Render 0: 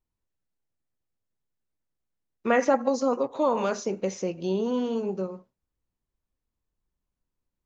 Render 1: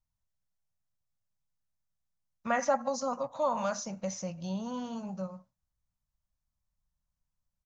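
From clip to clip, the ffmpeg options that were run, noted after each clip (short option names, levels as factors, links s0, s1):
-af "firequalizer=gain_entry='entry(160,0);entry(400,-27);entry(570,-4);entry(1200,-3);entry(2500,-9);entry(5900,1);entry(9400,-5)':delay=0.05:min_phase=1"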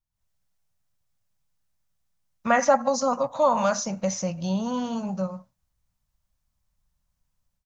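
-af "dynaudnorm=f=120:g=3:m=3.98,volume=0.708"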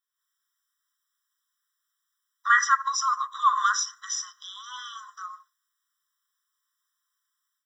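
-af "afftfilt=real='re*eq(mod(floor(b*sr/1024/1000),2),1)':imag='im*eq(mod(floor(b*sr/1024/1000),2),1)':win_size=1024:overlap=0.75,volume=2.24"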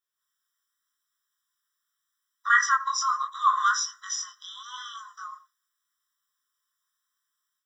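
-af "flanger=delay=17.5:depth=6.9:speed=0.8,volume=1.33"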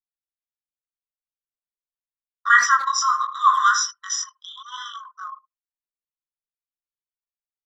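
-filter_complex "[0:a]asplit=2[s0][s1];[s1]adelay=80,highpass=300,lowpass=3400,asoftclip=type=hard:threshold=0.15,volume=0.282[s2];[s0][s2]amix=inputs=2:normalize=0,anlmdn=0.398,volume=1.88"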